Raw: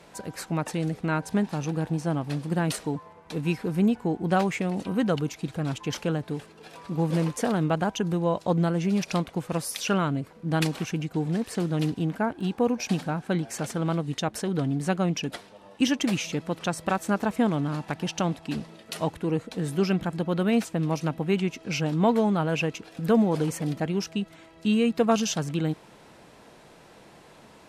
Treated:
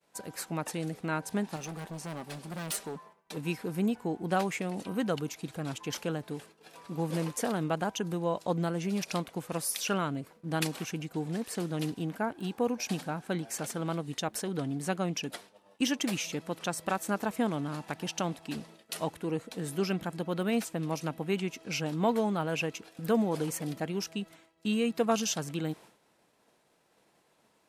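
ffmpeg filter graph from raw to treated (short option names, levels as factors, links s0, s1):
-filter_complex "[0:a]asettb=1/sr,asplit=3[s0][s1][s2];[s0]atrim=end=1.564[s3];[s1]atrim=start=1.56:end=3.37,asetpts=PTS-STARTPTS,afade=t=in:d=0.004:c=qsin,afade=t=out:st=1.806:d=0.004:c=qsin,aecho=1:1:5.1:0.51,atrim=end_sample=79821,asoftclip=type=hard:threshold=0.0473,equalizer=f=120:w=1.8:g=-8[s4];[s2]atrim=start=3.366[s5];[s3][s4]acrossfade=d=0.004:c1=hsin:c2=qsin[s6];[s6][s5]acrossfade=d=0.004:c1=qsin:c2=hsin,lowshelf=f=120:g=-10.5,agate=range=0.0224:threshold=0.00708:ratio=3:detection=peak,highshelf=f=9200:g=11,volume=0.596"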